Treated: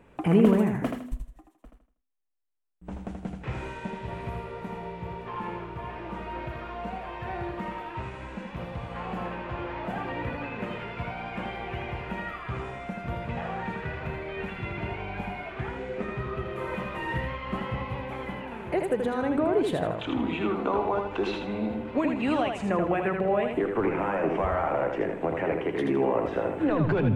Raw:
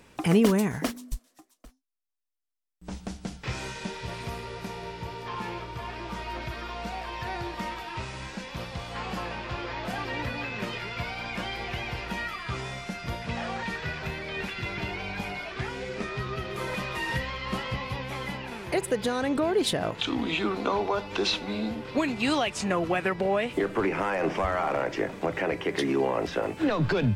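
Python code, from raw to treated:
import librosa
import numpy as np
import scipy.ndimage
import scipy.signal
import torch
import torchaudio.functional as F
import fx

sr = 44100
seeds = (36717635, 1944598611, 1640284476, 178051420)

y = fx.curve_eq(x, sr, hz=(790.0, 2800.0, 5100.0, 7400.0), db=(0, -7, -22, -15))
y = fx.echo_feedback(y, sr, ms=80, feedback_pct=33, wet_db=-5.0)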